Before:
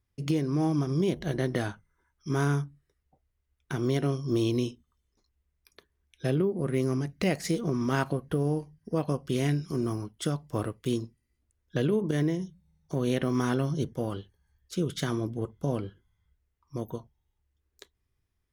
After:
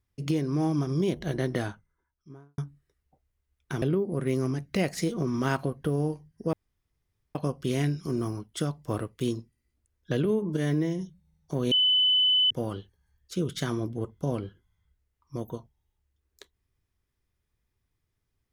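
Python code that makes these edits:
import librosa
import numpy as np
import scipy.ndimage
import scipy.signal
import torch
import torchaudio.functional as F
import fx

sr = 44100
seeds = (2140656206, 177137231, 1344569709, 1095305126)

y = fx.studio_fade_out(x, sr, start_s=1.51, length_s=1.07)
y = fx.edit(y, sr, fx.cut(start_s=3.82, length_s=2.47),
    fx.insert_room_tone(at_s=9.0, length_s=0.82),
    fx.stretch_span(start_s=11.9, length_s=0.49, factor=1.5),
    fx.bleep(start_s=13.12, length_s=0.79, hz=3010.0, db=-19.0), tone=tone)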